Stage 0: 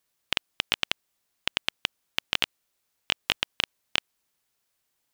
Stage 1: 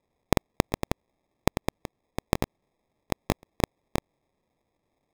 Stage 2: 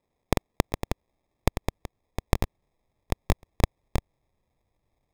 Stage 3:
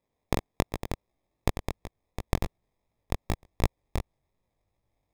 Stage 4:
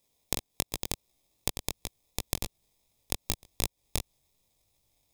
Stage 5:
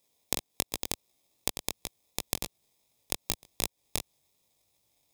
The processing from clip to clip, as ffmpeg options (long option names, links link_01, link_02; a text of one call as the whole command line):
ffmpeg -i in.wav -af "acrusher=samples=30:mix=1:aa=0.000001" out.wav
ffmpeg -i in.wav -af "asubboost=boost=4:cutoff=120,volume=-1.5dB" out.wav
ffmpeg -i in.wav -af "flanger=delay=17:depth=5.1:speed=2.7" out.wav
ffmpeg -i in.wav -af "aexciter=amount=5.5:drive=4.4:freq=2600,acompressor=threshold=-26dB:ratio=6" out.wav
ffmpeg -i in.wav -af "highpass=frequency=180:poles=1,volume=1dB" out.wav